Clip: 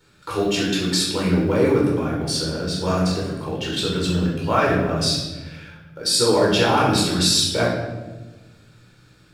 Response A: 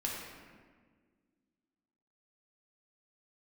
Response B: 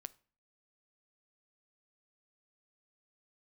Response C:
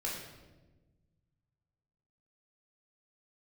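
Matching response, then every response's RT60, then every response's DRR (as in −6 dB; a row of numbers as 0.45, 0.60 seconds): C; 1.6, 0.45, 1.2 seconds; −4.0, 15.5, −4.5 decibels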